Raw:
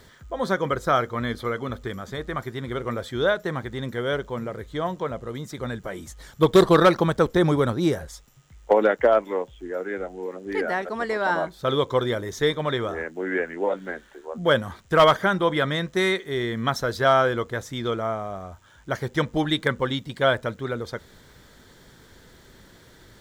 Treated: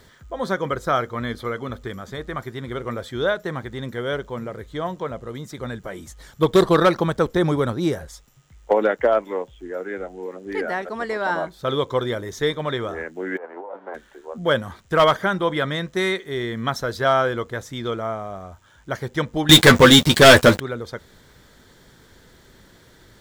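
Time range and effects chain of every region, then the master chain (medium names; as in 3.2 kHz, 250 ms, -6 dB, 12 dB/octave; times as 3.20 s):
13.36–13.94 s: formants flattened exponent 0.6 + compressor with a negative ratio -31 dBFS + Butterworth band-pass 680 Hz, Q 1.1
19.49–20.60 s: treble shelf 2.5 kHz +7.5 dB + waveshaping leveller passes 5 + doubling 12 ms -6 dB
whole clip: none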